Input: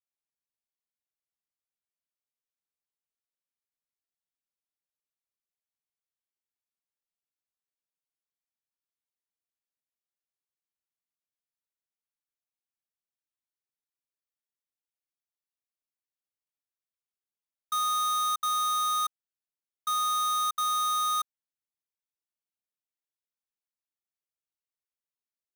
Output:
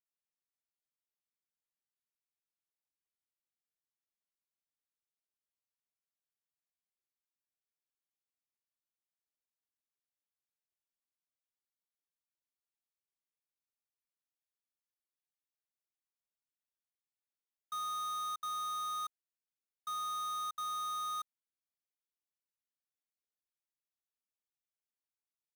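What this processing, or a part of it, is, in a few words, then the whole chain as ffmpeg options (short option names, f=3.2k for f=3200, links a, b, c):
saturation between pre-emphasis and de-emphasis: -af "highshelf=f=2.3k:g=10.5,asoftclip=type=tanh:threshold=-21.5dB,highshelf=f=2.3k:g=-10.5,volume=-8dB"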